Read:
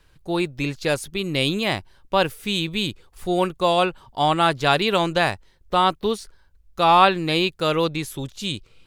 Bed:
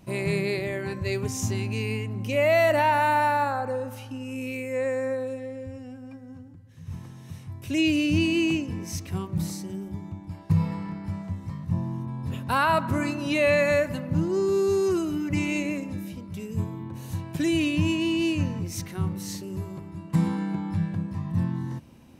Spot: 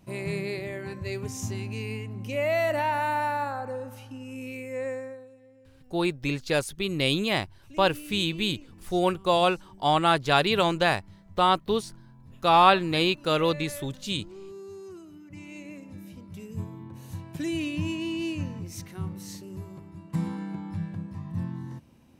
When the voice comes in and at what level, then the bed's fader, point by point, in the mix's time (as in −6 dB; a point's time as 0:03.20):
5.65 s, −3.0 dB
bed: 0:04.92 −5 dB
0:05.31 −19.5 dB
0:15.27 −19.5 dB
0:16.22 −6 dB